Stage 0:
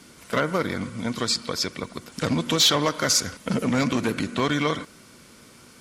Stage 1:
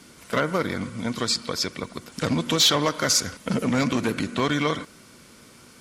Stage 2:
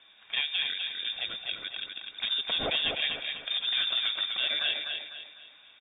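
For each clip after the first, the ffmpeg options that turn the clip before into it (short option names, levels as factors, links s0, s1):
-af anull
-filter_complex "[0:a]asplit=2[s0][s1];[s1]aecho=0:1:250|500|750|1000|1250:0.562|0.214|0.0812|0.0309|0.0117[s2];[s0][s2]amix=inputs=2:normalize=0,lowpass=f=3200:t=q:w=0.5098,lowpass=f=3200:t=q:w=0.6013,lowpass=f=3200:t=q:w=0.9,lowpass=f=3200:t=q:w=2.563,afreqshift=-3800,volume=0.447"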